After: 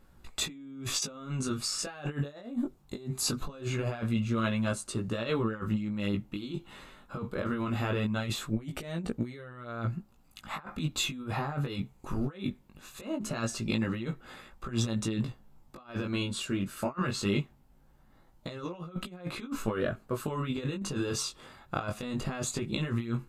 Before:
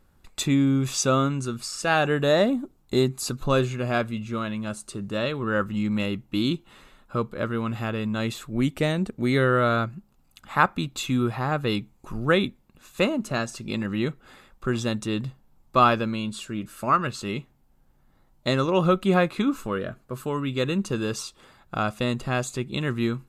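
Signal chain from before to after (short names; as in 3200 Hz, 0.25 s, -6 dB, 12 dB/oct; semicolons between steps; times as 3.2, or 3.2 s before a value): high shelf 6300 Hz -2.5 dB; negative-ratio compressor -29 dBFS, ratio -0.5; chorus 0.21 Hz, delay 17 ms, depth 4.1 ms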